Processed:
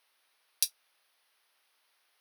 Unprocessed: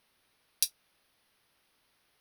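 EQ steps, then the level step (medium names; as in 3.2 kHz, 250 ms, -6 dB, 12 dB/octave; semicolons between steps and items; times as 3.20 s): high-pass 640 Hz 12 dB/octave; 0.0 dB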